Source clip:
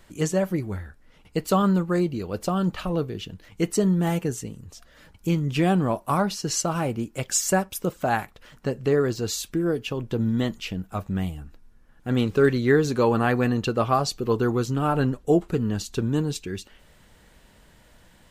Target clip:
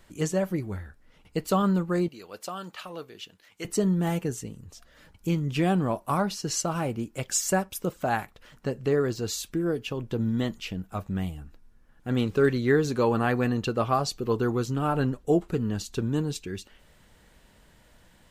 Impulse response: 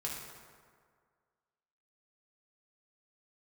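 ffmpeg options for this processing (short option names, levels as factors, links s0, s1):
-filter_complex "[0:a]asettb=1/sr,asplit=3[s0][s1][s2];[s0]atrim=end=2.084[s3];[s1]atrim=start=2.08:end=3.65,asetpts=PTS-STARTPTS,afade=t=in:d=0.004:c=qsin,afade=t=out:st=1.566:d=0.004:c=qsin,highpass=f=1200:p=1[s4];[s2]atrim=start=3.646[s5];[s3][s4]acrossfade=d=0.004:c1=hsin:c2=qsin[s6];[s6][s5]acrossfade=d=0.004:c1=qsin:c2=hsin,volume=0.708"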